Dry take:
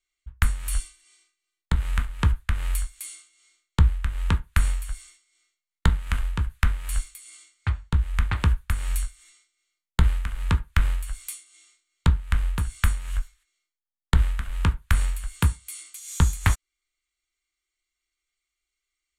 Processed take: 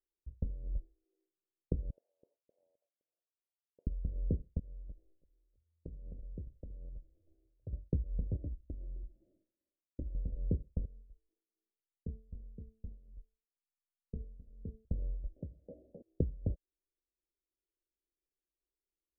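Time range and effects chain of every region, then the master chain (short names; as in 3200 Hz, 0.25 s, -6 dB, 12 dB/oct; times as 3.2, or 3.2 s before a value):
1.9–3.87 HPF 870 Hz 24 dB/oct + compressor 4:1, threshold -41 dBFS
4.59–7.73 compressor 12:1, threshold -34 dBFS + frequency-shifting echo 0.321 s, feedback 41%, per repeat -42 Hz, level -21.5 dB
8.36–10.15 minimum comb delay 0.92 ms + comb 3.2 ms, depth 53% + compressor 3:1, threshold -36 dBFS
10.85–14.85 running mean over 6 samples + bell 650 Hz -8.5 dB 0.39 oct + resonator 220 Hz, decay 0.53 s, mix 90%
15.36–16.02 compressor 3:1, threshold -29 dBFS + careless resampling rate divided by 8×, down none, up zero stuff
whole clip: compressor 10:1, threshold -23 dBFS; steep low-pass 570 Hz 72 dB/oct; tilt +3 dB/oct; gain +5.5 dB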